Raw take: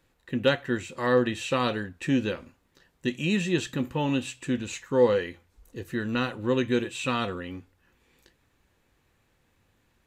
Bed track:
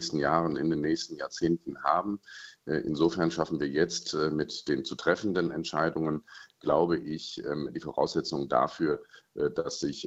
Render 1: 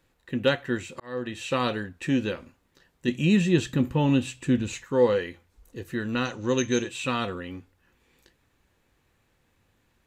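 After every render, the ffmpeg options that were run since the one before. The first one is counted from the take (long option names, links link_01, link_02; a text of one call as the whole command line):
ffmpeg -i in.wav -filter_complex "[0:a]asettb=1/sr,asplit=3[link_01][link_02][link_03];[link_01]atrim=end=3.084[link_04];[link_02]atrim=start=3.08:end=4.84,asetpts=PTS-STARTPTS,afade=type=in:duration=0.004:curve=qsin,afade=type=out:start_time=1.756:duration=0.004:curve=qsin,lowshelf=frequency=300:gain=8.5[link_05];[link_03]atrim=start=4.836[link_06];[link_04][link_05]acrossfade=duration=0.004:curve1=hsin:curve2=qsin[link_07];[link_07][link_06]acrossfade=duration=0.004:curve1=qsin:curve2=hsin,asettb=1/sr,asplit=3[link_08][link_09][link_10];[link_08]atrim=end=6.254[link_11];[link_09]atrim=start=6.25:end=6.89,asetpts=PTS-STARTPTS,afade=type=in:duration=0.004:curve=qsin,afade=type=out:start_time=0.636:duration=0.004:curve=qsin,lowpass=frequency=6200:width_type=q:width=13[link_12];[link_10]atrim=start=6.886[link_13];[link_11][link_12]acrossfade=duration=0.004:curve1=hsin:curve2=qsin[link_14];[link_14][link_13]acrossfade=duration=0.004:curve1=qsin:curve2=hsin,asplit=2[link_15][link_16];[link_15]atrim=end=1,asetpts=PTS-STARTPTS,afade=type=out:start_time=0.996:duration=0.004:curve=hsin[link_17];[link_16]atrim=start=1,asetpts=PTS-STARTPTS,afade=type=in:duration=0.55[link_18];[link_17][link_18]concat=n=2:v=0:a=1" out.wav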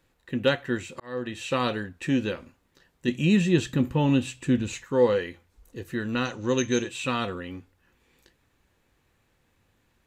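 ffmpeg -i in.wav -af anull out.wav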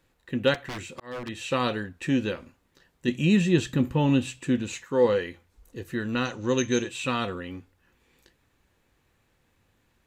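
ffmpeg -i in.wav -filter_complex "[0:a]asettb=1/sr,asplit=3[link_01][link_02][link_03];[link_01]atrim=end=0.544[link_04];[link_02]atrim=start=0.54:end=1.29,asetpts=PTS-STARTPTS,afade=type=in:duration=0.004:curve=qsin,afade=type=out:start_time=0.746:duration=0.004:curve=qsin,aeval=exprs='0.0335*(abs(mod(val(0)/0.0335+3,4)-2)-1)':channel_layout=same[link_05];[link_03]atrim=start=1.286[link_06];[link_04][link_05]acrossfade=duration=0.004:curve1=hsin:curve2=qsin[link_07];[link_07][link_06]acrossfade=duration=0.004:curve1=qsin:curve2=hsin,asettb=1/sr,asplit=3[link_08][link_09][link_10];[link_08]atrim=end=4.394[link_11];[link_09]atrim=start=4.39:end=5.05,asetpts=PTS-STARTPTS,afade=type=in:duration=0.004:curve=qsin,afade=type=out:start_time=0.656:duration=0.004:curve=qsin,lowshelf=frequency=92:gain=-12[link_12];[link_10]atrim=start=5.046[link_13];[link_11][link_12]acrossfade=duration=0.004:curve1=hsin:curve2=qsin[link_14];[link_14][link_13]acrossfade=duration=0.004:curve1=qsin:curve2=hsin" out.wav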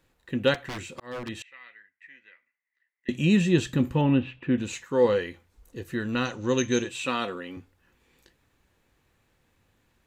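ffmpeg -i in.wav -filter_complex "[0:a]asettb=1/sr,asplit=3[link_01][link_02][link_03];[link_01]atrim=end=1.424[link_04];[link_02]atrim=start=1.42:end=3.09,asetpts=PTS-STARTPTS,afade=type=in:duration=0.004:curve=qsin,afade=type=out:start_time=1.666:duration=0.004:curve=qsin,bandpass=frequency=2000:width_type=q:width=18[link_05];[link_03]atrim=start=3.086[link_06];[link_04][link_05]acrossfade=duration=0.004:curve1=hsin:curve2=qsin[link_07];[link_07][link_06]acrossfade=duration=0.004:curve1=qsin:curve2=hsin,asettb=1/sr,asplit=3[link_08][link_09][link_10];[link_08]atrim=end=4.014[link_11];[link_09]atrim=start=4.01:end=4.58,asetpts=PTS-STARTPTS,afade=type=in:duration=0.004:curve=qsin,afade=type=out:start_time=0.566:duration=0.004:curve=qsin,lowpass=frequency=2800:width=0.5412,lowpass=frequency=2800:width=1.3066[link_12];[link_10]atrim=start=4.576[link_13];[link_11][link_12]acrossfade=duration=0.004:curve1=hsin:curve2=qsin[link_14];[link_14][link_13]acrossfade=duration=0.004:curve1=qsin:curve2=hsin,asettb=1/sr,asplit=3[link_15][link_16][link_17];[link_15]atrim=end=7.044[link_18];[link_16]atrim=start=7.04:end=7.57,asetpts=PTS-STARTPTS,afade=type=in:duration=0.004:curve=qsin,afade=type=out:start_time=0.526:duration=0.004:curve=qsin,highpass=220[link_19];[link_17]atrim=start=7.566[link_20];[link_18][link_19]acrossfade=duration=0.004:curve1=hsin:curve2=qsin[link_21];[link_21][link_20]acrossfade=duration=0.004:curve1=qsin:curve2=hsin" out.wav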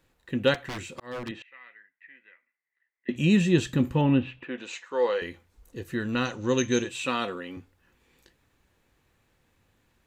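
ffmpeg -i in.wav -filter_complex "[0:a]asettb=1/sr,asplit=3[link_01][link_02][link_03];[link_01]atrim=end=1.314[link_04];[link_02]atrim=start=1.31:end=3.16,asetpts=PTS-STARTPTS,afade=type=in:duration=0.004:curve=qsin,afade=type=out:start_time=1.846:duration=0.004:curve=qsin,highpass=170,lowpass=2600[link_05];[link_03]atrim=start=3.156[link_06];[link_04][link_05]acrossfade=duration=0.004:curve1=hsin:curve2=qsin[link_07];[link_07][link_06]acrossfade=duration=0.004:curve1=qsin:curve2=hsin,asettb=1/sr,asplit=3[link_08][link_09][link_10];[link_08]atrim=end=4.454[link_11];[link_09]atrim=start=4.45:end=5.22,asetpts=PTS-STARTPTS,afade=type=in:duration=0.004:curve=qsin,afade=type=out:start_time=0.766:duration=0.004:curve=qsin,highpass=530,lowpass=5400[link_12];[link_10]atrim=start=5.216[link_13];[link_11][link_12]acrossfade=duration=0.004:curve1=hsin:curve2=qsin[link_14];[link_14][link_13]acrossfade=duration=0.004:curve1=qsin:curve2=hsin" out.wav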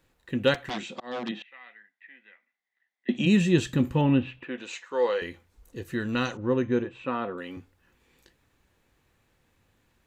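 ffmpeg -i in.wav -filter_complex "[0:a]asplit=3[link_01][link_02][link_03];[link_01]afade=type=out:start_time=0.69:duration=0.02[link_04];[link_02]highpass=frequency=170:width=0.5412,highpass=frequency=170:width=1.3066,equalizer=frequency=210:width_type=q:width=4:gain=9,equalizer=frequency=740:width_type=q:width=4:gain=10,equalizer=frequency=3500:width_type=q:width=4:gain=8,lowpass=frequency=6700:width=0.5412,lowpass=frequency=6700:width=1.3066,afade=type=in:start_time=0.69:duration=0.02,afade=type=out:start_time=3.25:duration=0.02[link_05];[link_03]afade=type=in:start_time=3.25:duration=0.02[link_06];[link_04][link_05][link_06]amix=inputs=3:normalize=0,asettb=1/sr,asplit=3[link_07][link_08][link_09];[link_07]atrim=end=6.374[link_10];[link_08]atrim=start=6.37:end=7.38,asetpts=PTS-STARTPTS,afade=type=in:duration=0.004:curve=qsin,afade=type=out:start_time=1.006:duration=0.004:curve=qsin,lowpass=1400[link_11];[link_09]atrim=start=7.376[link_12];[link_10][link_11]acrossfade=duration=0.004:curve1=hsin:curve2=qsin[link_13];[link_13][link_12]acrossfade=duration=0.004:curve1=qsin:curve2=hsin" out.wav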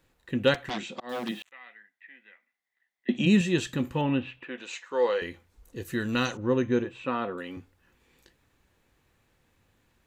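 ffmpeg -i in.wav -filter_complex "[0:a]asettb=1/sr,asplit=3[link_01][link_02][link_03];[link_01]atrim=end=1.094[link_04];[link_02]atrim=start=1.09:end=1.52,asetpts=PTS-STARTPTS,afade=type=in:duration=0.004:curve=qsin,afade=type=out:start_time=0.426:duration=0.004:curve=qsin,acrusher=bits=7:mix=0:aa=0.5[link_05];[link_03]atrim=start=1.516[link_06];[link_04][link_05]acrossfade=duration=0.004:curve1=hsin:curve2=qsin[link_07];[link_07][link_06]acrossfade=duration=0.004:curve1=qsin:curve2=hsin,asettb=1/sr,asplit=3[link_08][link_09][link_10];[link_08]atrim=end=3.414[link_11];[link_09]atrim=start=3.41:end=4.86,asetpts=PTS-STARTPTS,afade=type=in:duration=0.004:curve=qsin,afade=type=out:start_time=1.446:duration=0.004:curve=qsin,lowshelf=frequency=350:gain=-7.5[link_12];[link_10]atrim=start=4.856[link_13];[link_11][link_12]acrossfade=duration=0.004:curve1=hsin:curve2=qsin[link_14];[link_14][link_13]acrossfade=duration=0.004:curve1=qsin:curve2=hsin,asettb=1/sr,asplit=3[link_15][link_16][link_17];[link_15]atrim=end=5.804[link_18];[link_16]atrim=start=5.8:end=7.42,asetpts=PTS-STARTPTS,afade=type=in:duration=0.004:curve=qsin,afade=type=out:start_time=1.616:duration=0.004:curve=qsin,highshelf=frequency=5200:gain=9[link_19];[link_17]atrim=start=7.416[link_20];[link_18][link_19]acrossfade=duration=0.004:curve1=hsin:curve2=qsin[link_21];[link_21][link_20]acrossfade=duration=0.004:curve1=qsin:curve2=hsin" out.wav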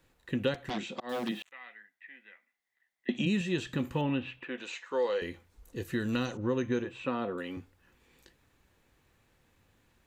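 ffmpeg -i in.wav -filter_complex "[0:a]acrossover=split=700|3700[link_01][link_02][link_03];[link_01]acompressor=threshold=-28dB:ratio=4[link_04];[link_02]acompressor=threshold=-39dB:ratio=4[link_05];[link_03]acompressor=threshold=-44dB:ratio=4[link_06];[link_04][link_05][link_06]amix=inputs=3:normalize=0,acrossover=split=4700[link_07][link_08];[link_08]alimiter=level_in=20dB:limit=-24dB:level=0:latency=1:release=244,volume=-20dB[link_09];[link_07][link_09]amix=inputs=2:normalize=0" out.wav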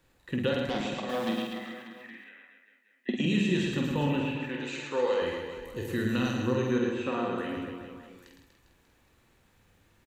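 ffmpeg -i in.wav -filter_complex "[0:a]asplit=2[link_01][link_02];[link_02]adelay=48,volume=-4dB[link_03];[link_01][link_03]amix=inputs=2:normalize=0,aecho=1:1:110|242|400.4|590.5|818.6:0.631|0.398|0.251|0.158|0.1" out.wav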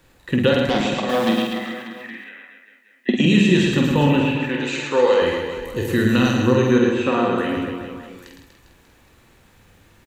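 ffmpeg -i in.wav -af "volume=11.5dB" out.wav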